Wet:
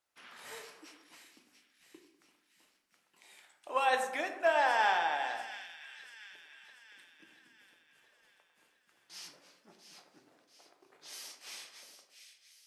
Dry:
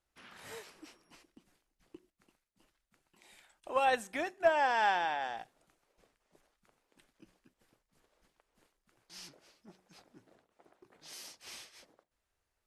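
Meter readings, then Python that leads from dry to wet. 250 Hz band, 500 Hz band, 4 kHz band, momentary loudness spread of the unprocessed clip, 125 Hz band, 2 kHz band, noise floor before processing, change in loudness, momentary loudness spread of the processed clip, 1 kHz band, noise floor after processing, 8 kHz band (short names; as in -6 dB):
-3.5 dB, -0.5 dB, +2.5 dB, 21 LU, n/a, +2.5 dB, -85 dBFS, -1.0 dB, 23 LU, +0.5 dB, -74 dBFS, +2.5 dB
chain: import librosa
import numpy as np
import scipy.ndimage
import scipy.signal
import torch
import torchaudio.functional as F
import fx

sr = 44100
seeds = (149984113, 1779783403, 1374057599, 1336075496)

p1 = fx.highpass(x, sr, hz=620.0, slope=6)
p2 = p1 + fx.echo_split(p1, sr, split_hz=1800.0, low_ms=99, high_ms=689, feedback_pct=52, wet_db=-10, dry=0)
p3 = fx.room_shoebox(p2, sr, seeds[0], volume_m3=89.0, walls='mixed', distance_m=0.39)
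y = p3 * librosa.db_to_amplitude(1.5)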